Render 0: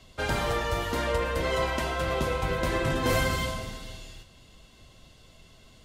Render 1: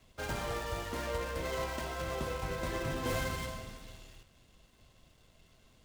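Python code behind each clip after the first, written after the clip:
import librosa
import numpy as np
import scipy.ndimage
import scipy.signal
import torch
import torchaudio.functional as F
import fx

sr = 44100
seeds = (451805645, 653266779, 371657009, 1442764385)

y = fx.dead_time(x, sr, dead_ms=0.11)
y = F.gain(torch.from_numpy(y), -8.5).numpy()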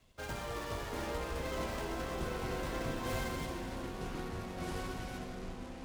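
y = fx.echo_pitch(x, sr, ms=290, semitones=-6, count=3, db_per_echo=-3.0)
y = F.gain(torch.from_numpy(y), -4.0).numpy()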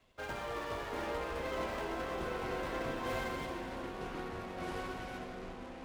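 y = fx.bass_treble(x, sr, bass_db=-8, treble_db=-9)
y = F.gain(torch.from_numpy(y), 2.0).numpy()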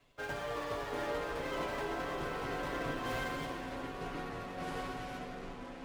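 y = x + 0.54 * np.pad(x, (int(7.0 * sr / 1000.0), 0))[:len(x)]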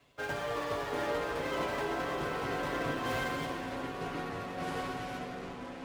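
y = scipy.signal.sosfilt(scipy.signal.butter(2, 56.0, 'highpass', fs=sr, output='sos'), x)
y = F.gain(torch.from_numpy(y), 3.5).numpy()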